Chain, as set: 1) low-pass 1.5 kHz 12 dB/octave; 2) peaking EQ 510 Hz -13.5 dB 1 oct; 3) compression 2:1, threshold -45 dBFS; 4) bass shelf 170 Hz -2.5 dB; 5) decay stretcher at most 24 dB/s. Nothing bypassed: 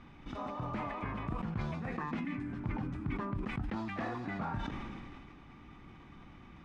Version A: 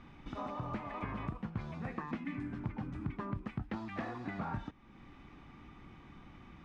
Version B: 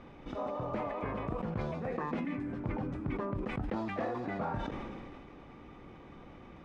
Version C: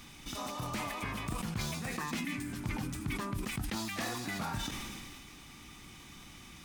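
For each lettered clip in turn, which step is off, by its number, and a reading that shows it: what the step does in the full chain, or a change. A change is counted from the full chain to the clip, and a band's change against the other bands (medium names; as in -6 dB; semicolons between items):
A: 5, crest factor change +2.5 dB; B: 2, 500 Hz band +8.0 dB; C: 1, 4 kHz band +14.0 dB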